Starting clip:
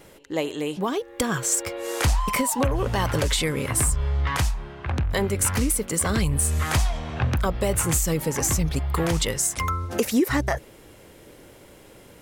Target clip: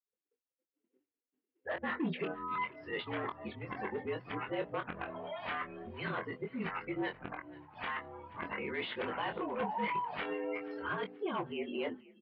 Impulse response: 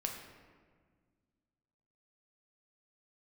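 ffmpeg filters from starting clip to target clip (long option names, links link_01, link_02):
-filter_complex "[0:a]areverse,bandreject=frequency=60:width_type=h:width=6,bandreject=frequency=120:width_type=h:width=6,bandreject=frequency=180:width_type=h:width=6,bandreject=frequency=240:width_type=h:width=6,bandreject=frequency=300:width_type=h:width=6,afftdn=noise_reduction=29:noise_floor=-34,agate=range=-33dB:threshold=-52dB:ratio=3:detection=peak,lowshelf=frequency=490:gain=-11,aresample=11025,asoftclip=type=hard:threshold=-25dB,aresample=44100,alimiter=level_in=6dB:limit=-24dB:level=0:latency=1:release=127,volume=-6dB,asplit=2[link_01][link_02];[link_02]adelay=23,volume=-6dB[link_03];[link_01][link_03]amix=inputs=2:normalize=0,asplit=4[link_04][link_05][link_06][link_07];[link_05]adelay=482,afreqshift=-36,volume=-21dB[link_08];[link_06]adelay=964,afreqshift=-72,volume=-28.5dB[link_09];[link_07]adelay=1446,afreqshift=-108,volume=-36.1dB[link_10];[link_04][link_08][link_09][link_10]amix=inputs=4:normalize=0,highpass=frequency=200:width_type=q:width=0.5412,highpass=frequency=200:width_type=q:width=1.307,lowpass=frequency=3200:width_type=q:width=0.5176,lowpass=frequency=3200:width_type=q:width=0.7071,lowpass=frequency=3200:width_type=q:width=1.932,afreqshift=-53"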